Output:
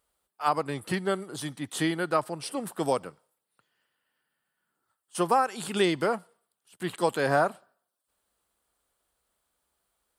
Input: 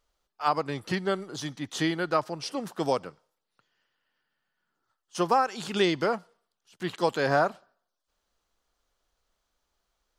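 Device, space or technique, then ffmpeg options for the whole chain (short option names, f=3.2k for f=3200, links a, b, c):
budget condenser microphone: -af "highpass=64,highshelf=f=7.4k:t=q:w=3:g=6.5"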